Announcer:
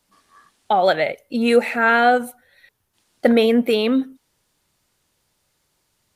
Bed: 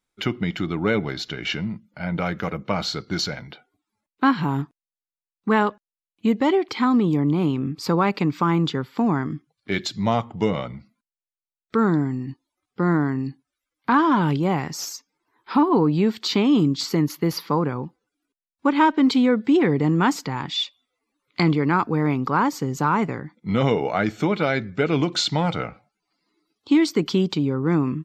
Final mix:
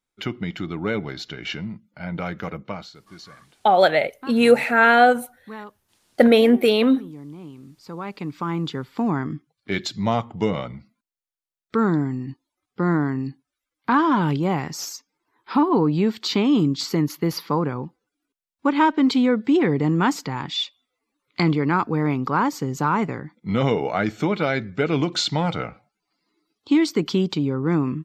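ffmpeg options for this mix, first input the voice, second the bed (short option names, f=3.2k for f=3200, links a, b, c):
-filter_complex "[0:a]adelay=2950,volume=1dB[a];[1:a]volume=14dB,afade=t=out:st=2.58:d=0.32:silence=0.188365,afade=t=in:st=7.82:d=1.47:silence=0.133352[b];[a][b]amix=inputs=2:normalize=0"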